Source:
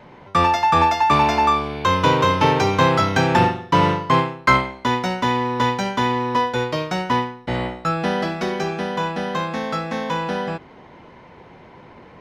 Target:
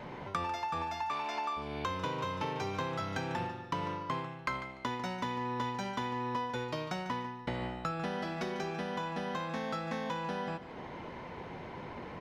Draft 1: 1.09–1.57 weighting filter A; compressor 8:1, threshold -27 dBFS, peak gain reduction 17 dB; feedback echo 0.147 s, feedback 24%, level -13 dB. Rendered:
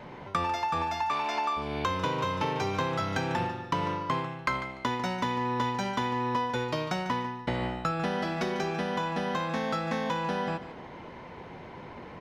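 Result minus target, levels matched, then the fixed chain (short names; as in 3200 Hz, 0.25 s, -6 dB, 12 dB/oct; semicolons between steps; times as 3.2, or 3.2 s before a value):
compressor: peak gain reduction -6 dB
1.09–1.57 weighting filter A; compressor 8:1, threshold -34 dBFS, peak gain reduction 23 dB; feedback echo 0.147 s, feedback 24%, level -13 dB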